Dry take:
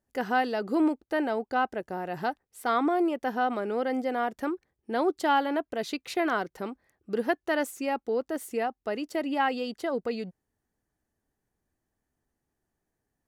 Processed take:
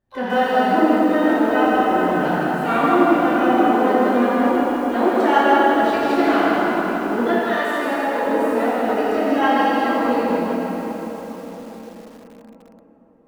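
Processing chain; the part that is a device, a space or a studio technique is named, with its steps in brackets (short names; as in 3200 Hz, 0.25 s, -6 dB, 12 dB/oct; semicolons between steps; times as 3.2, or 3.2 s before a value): shimmer-style reverb (harmoniser +12 st -10 dB; reverb RT60 4.9 s, pre-delay 3 ms, DRR -9 dB); 7.39–8.26 HPF 540 Hz 6 dB/oct; tone controls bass +5 dB, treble -11 dB; lo-fi delay 0.16 s, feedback 35%, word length 7-bit, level -5 dB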